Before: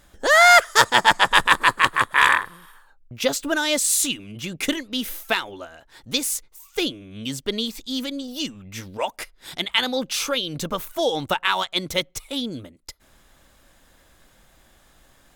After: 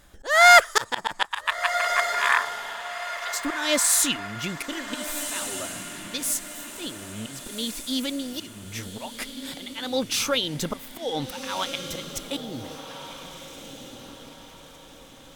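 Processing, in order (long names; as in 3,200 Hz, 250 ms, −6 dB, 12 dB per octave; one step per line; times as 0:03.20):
0:01.25–0:03.45: Butterworth high-pass 740 Hz 48 dB per octave
volume swells 241 ms
feedback delay with all-pass diffusion 1,483 ms, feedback 43%, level −9 dB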